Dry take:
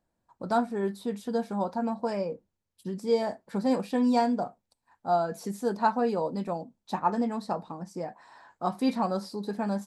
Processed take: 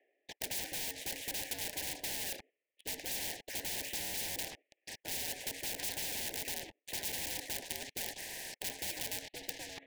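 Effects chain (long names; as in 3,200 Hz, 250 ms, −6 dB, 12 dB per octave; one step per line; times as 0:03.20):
fade-out on the ending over 1.58 s
single-sideband voice off tune +72 Hz 370–2,800 Hz
in parallel at +3 dB: output level in coarse steps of 23 dB
on the sum: phaser with its sweep stopped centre 2,100 Hz, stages 4
leveller curve on the samples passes 1
wrap-around overflow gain 32 dB
leveller curve on the samples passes 5
Chebyshev band-stop filter 840–1,800 Hz, order 4
reversed playback
upward compression, threshold −45 dBFS
reversed playback
every bin compressed towards the loudest bin 4 to 1
level +6 dB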